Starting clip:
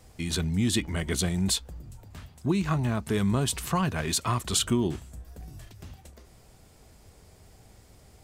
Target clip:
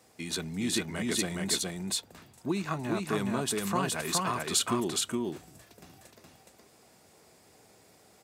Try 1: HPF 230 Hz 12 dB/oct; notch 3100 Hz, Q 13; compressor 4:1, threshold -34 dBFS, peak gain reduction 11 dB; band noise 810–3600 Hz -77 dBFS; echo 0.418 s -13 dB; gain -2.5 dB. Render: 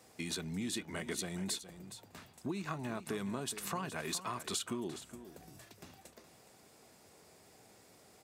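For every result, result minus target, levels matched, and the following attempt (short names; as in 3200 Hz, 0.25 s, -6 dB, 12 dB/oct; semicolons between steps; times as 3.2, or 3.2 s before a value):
compressor: peak gain reduction +11 dB; echo-to-direct -11 dB
HPF 230 Hz 12 dB/oct; notch 3100 Hz, Q 13; band noise 810–3600 Hz -77 dBFS; echo 0.418 s -13 dB; gain -2.5 dB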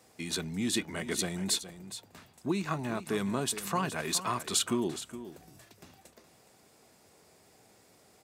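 echo-to-direct -11 dB
HPF 230 Hz 12 dB/oct; notch 3100 Hz, Q 13; band noise 810–3600 Hz -77 dBFS; echo 0.418 s -2 dB; gain -2.5 dB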